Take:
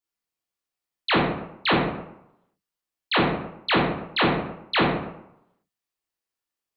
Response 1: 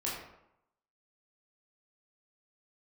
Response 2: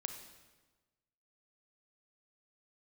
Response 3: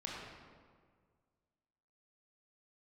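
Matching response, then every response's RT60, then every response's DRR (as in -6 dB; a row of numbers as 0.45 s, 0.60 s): 1; 0.80 s, 1.3 s, 1.8 s; -6.0 dB, 6.5 dB, -4.5 dB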